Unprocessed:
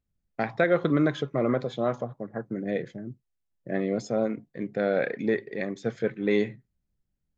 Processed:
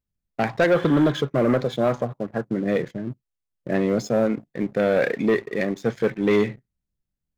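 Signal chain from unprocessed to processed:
healed spectral selection 0:00.76–0:01.08, 1,400–3,500 Hz after
leveller curve on the samples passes 2

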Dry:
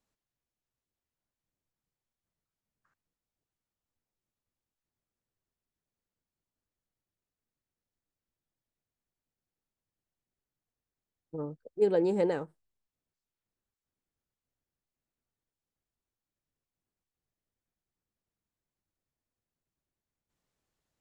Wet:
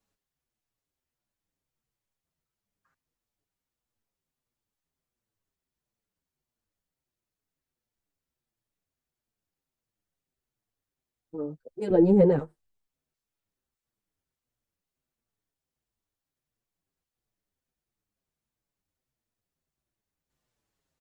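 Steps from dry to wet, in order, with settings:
0:11.90–0:12.39: spectral tilt −4.5 dB per octave
barber-pole flanger 6.6 ms −1.5 Hz
level +5 dB

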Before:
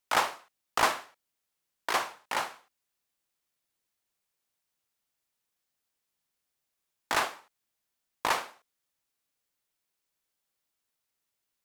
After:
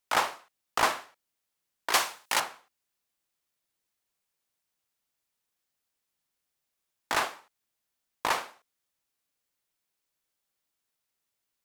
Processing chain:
0:01.93–0:02.40: high-shelf EQ 2,600 Hz +12 dB

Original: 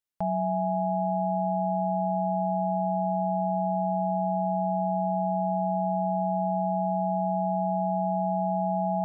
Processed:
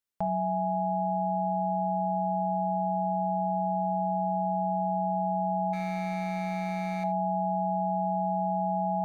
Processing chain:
0:05.73–0:07.04: running median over 41 samples
mains-hum notches 60/120/180 Hz
reverb whose tail is shaped and stops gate 100 ms flat, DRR 9 dB

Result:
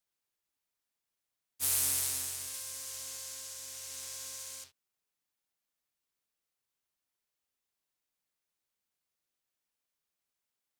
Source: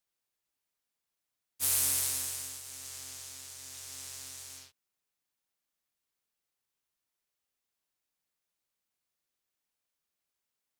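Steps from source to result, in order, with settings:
0:02.34–0:04.64: echo machine with several playback heads 66 ms, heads all three, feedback 64%, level −8 dB
level −1.5 dB

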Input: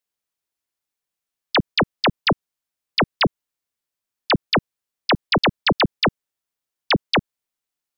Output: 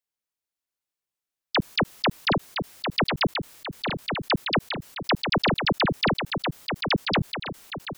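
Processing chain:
delay with pitch and tempo change per echo 679 ms, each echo −1 semitone, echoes 3, each echo −6 dB
level that may fall only so fast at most 55 dB per second
level −5.5 dB

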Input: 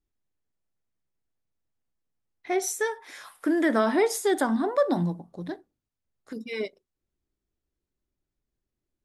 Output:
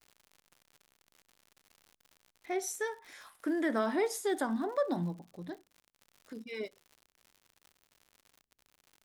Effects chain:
surface crackle 110 per second −38 dBFS
level −8 dB

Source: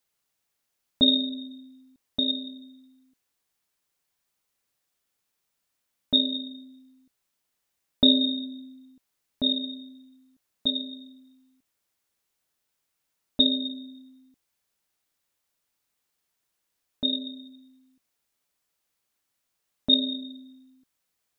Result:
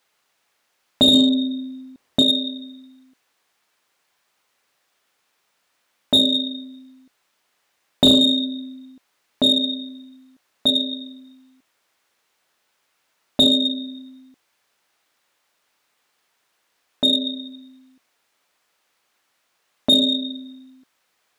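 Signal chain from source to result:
0:01.13–0:02.22: low-shelf EQ 500 Hz +8.5 dB
mid-hump overdrive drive 20 dB, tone 2,100 Hz, clips at −5 dBFS
level +4 dB

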